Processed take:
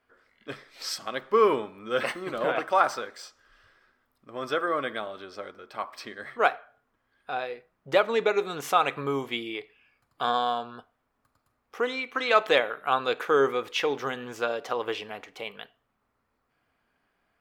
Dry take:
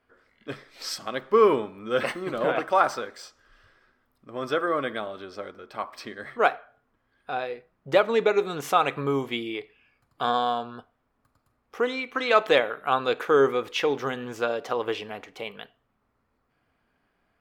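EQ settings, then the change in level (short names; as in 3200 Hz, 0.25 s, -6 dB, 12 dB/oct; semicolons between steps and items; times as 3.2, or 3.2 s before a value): low shelf 460 Hz -5.5 dB; 0.0 dB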